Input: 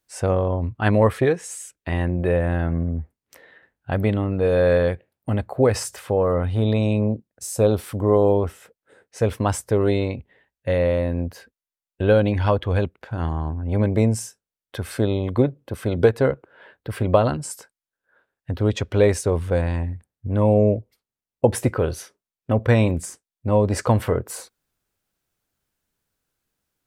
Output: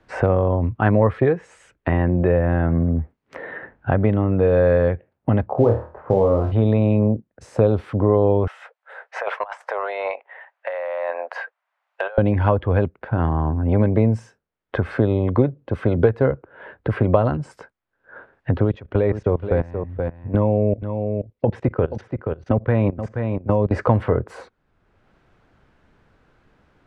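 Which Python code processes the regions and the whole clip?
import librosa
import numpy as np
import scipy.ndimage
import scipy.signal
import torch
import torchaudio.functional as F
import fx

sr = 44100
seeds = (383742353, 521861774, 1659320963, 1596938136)

y = fx.chain(x, sr, fx.lowpass(hz=1100.0, slope=24),
    fx.quant_float(bits=4),
    fx.room_flutter(wall_m=4.4, rt60_s=0.31), at=(5.46, 6.52))
y = fx.chain(y, sr, fx.steep_highpass(hz=640.0, slope=36),
    fx.over_compress(threshold_db=-38.0, ratio=-1.0), at=(8.47, 12.18))
y = fx.chain(y, sr, fx.lowpass(hz=5500.0, slope=12),
    fx.level_steps(step_db=21),
    fx.echo_single(ms=478, db=-11.5), at=(18.64, 23.71))
y = scipy.signal.sosfilt(scipy.signal.butter(2, 1800.0, 'lowpass', fs=sr, output='sos'), y)
y = fx.band_squash(y, sr, depth_pct=70)
y = y * librosa.db_to_amplitude(3.0)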